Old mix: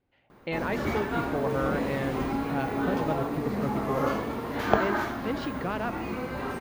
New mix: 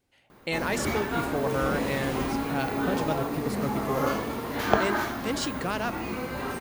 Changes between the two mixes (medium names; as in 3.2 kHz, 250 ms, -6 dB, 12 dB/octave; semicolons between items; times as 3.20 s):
speech: remove distance through air 200 m; second sound +3.0 dB; master: add treble shelf 3.8 kHz +9 dB